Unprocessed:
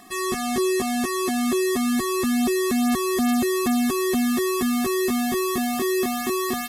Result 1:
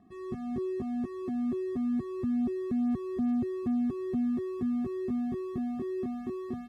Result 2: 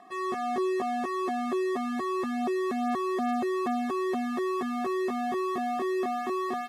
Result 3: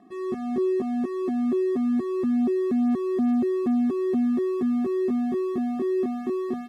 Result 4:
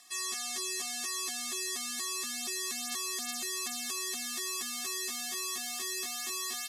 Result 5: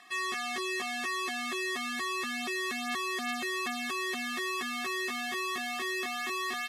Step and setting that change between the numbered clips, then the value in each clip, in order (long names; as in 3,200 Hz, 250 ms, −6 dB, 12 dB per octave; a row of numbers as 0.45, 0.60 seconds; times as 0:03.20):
resonant band-pass, frequency: 110, 750, 290, 6,000, 2,300 Hertz